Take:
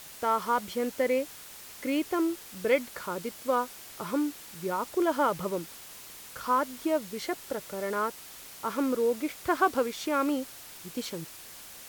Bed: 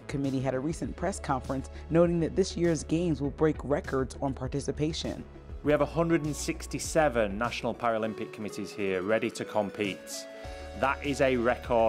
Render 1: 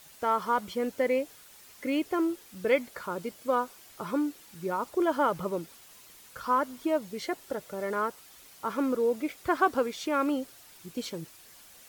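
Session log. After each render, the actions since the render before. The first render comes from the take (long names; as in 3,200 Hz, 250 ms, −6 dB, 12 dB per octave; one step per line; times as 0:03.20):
broadband denoise 8 dB, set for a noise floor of −47 dBFS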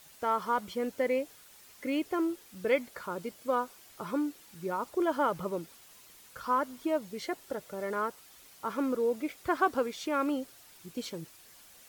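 level −2.5 dB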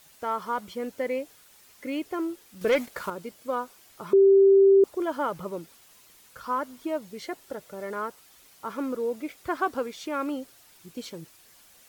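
0:02.61–0:03.10: leveller curve on the samples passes 2
0:04.13–0:04.84: beep over 391 Hz −13 dBFS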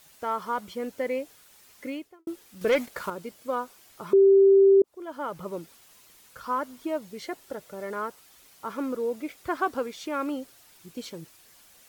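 0:01.86–0:02.27: fade out quadratic
0:04.82–0:05.55: fade in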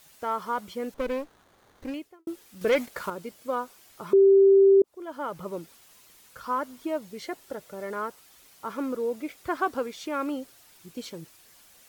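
0:00.94–0:01.94: windowed peak hold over 17 samples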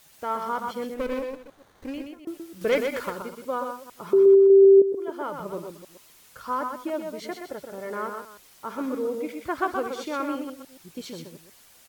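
delay that plays each chunk backwards 150 ms, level −11 dB
on a send: single-tap delay 125 ms −5.5 dB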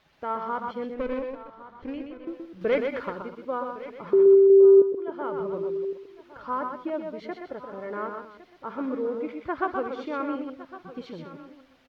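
high-frequency loss of the air 300 metres
single-tap delay 1,109 ms −16 dB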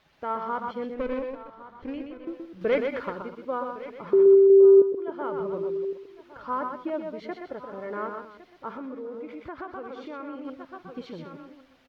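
0:08.77–0:10.45: downward compressor 3 to 1, threshold −36 dBFS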